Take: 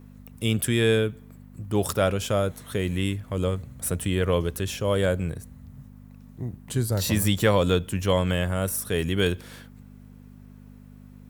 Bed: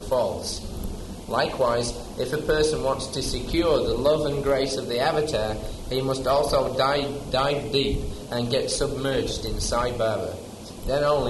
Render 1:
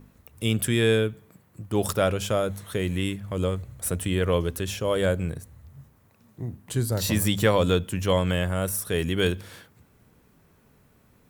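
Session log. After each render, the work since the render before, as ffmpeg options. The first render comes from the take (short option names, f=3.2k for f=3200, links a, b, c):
-af "bandreject=f=50:t=h:w=4,bandreject=f=100:t=h:w=4,bandreject=f=150:t=h:w=4,bandreject=f=200:t=h:w=4,bandreject=f=250:t=h:w=4"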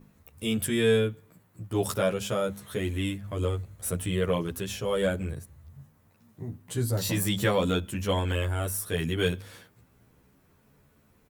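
-filter_complex "[0:a]asplit=2[a][b];[b]adelay=11.8,afreqshift=0.38[c];[a][c]amix=inputs=2:normalize=1"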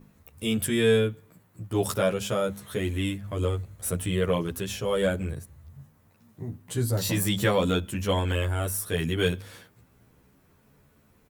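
-af "volume=1.5dB"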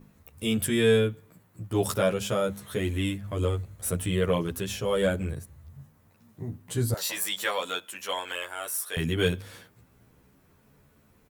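-filter_complex "[0:a]asettb=1/sr,asplit=3[a][b][c];[a]atrim=end=6.944[d];[b]atrim=start=6.94:end=8.97,asetpts=PTS-STARTPTS,afade=t=in:d=0.004:c=qsin,afade=t=out:st=2.026:d=0.004:c=qsin,highpass=790[e];[c]atrim=start=8.966[f];[d][e]acrossfade=d=0.004:c1=hsin:c2=qsin[g];[g][f]acrossfade=d=0.004:c1=qsin:c2=hsin"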